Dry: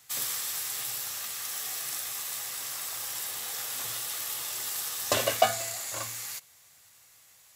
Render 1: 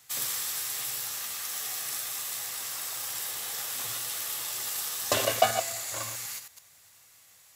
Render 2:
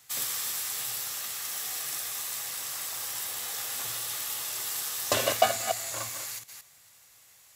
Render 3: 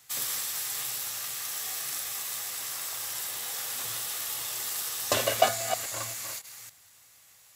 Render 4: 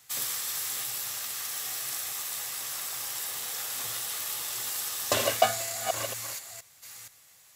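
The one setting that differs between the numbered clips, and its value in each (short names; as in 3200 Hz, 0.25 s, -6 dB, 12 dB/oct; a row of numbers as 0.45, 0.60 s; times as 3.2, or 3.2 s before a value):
reverse delay, time: 0.108, 0.174, 0.279, 0.472 s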